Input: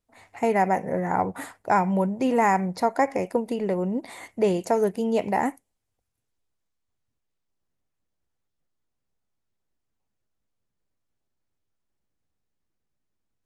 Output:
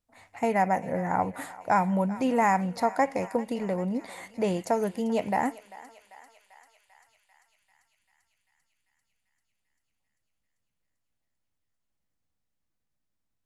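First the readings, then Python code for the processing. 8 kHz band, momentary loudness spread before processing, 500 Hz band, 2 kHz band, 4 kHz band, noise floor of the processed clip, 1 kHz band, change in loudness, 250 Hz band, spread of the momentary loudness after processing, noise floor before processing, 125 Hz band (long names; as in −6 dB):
−1.5 dB, 7 LU, −4.0 dB, −2.0 dB, −2.0 dB, −80 dBFS, −2.0 dB, −3.0 dB, −2.5 dB, 8 LU, −80 dBFS, −2.0 dB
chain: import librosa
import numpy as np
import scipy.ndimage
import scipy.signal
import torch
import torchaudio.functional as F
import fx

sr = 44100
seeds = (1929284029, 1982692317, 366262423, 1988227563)

y = fx.peak_eq(x, sr, hz=390.0, db=-8.5, octaves=0.3)
y = fx.echo_thinned(y, sr, ms=393, feedback_pct=76, hz=810.0, wet_db=-16)
y = y * librosa.db_to_amplitude(-2.0)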